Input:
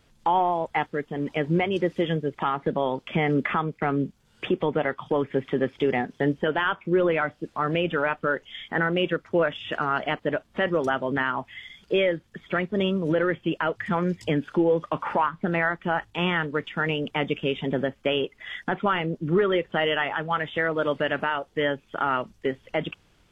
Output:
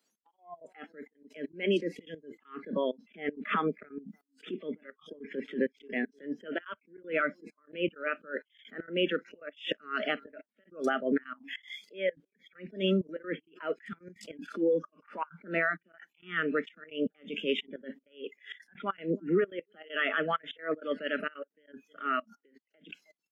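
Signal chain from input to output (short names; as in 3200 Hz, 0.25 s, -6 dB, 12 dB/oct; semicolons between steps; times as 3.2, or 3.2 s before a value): limiter -18 dBFS, peak gain reduction 5 dB; steep high-pass 190 Hz 48 dB/oct; outdoor echo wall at 54 m, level -26 dB; compressor 12:1, threshold -28 dBFS, peak gain reduction 7.5 dB; step gate "xx.x.xx.xxxx" 196 bpm -24 dB; spectral noise reduction 23 dB; attack slew limiter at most 200 dB/s; gain +6 dB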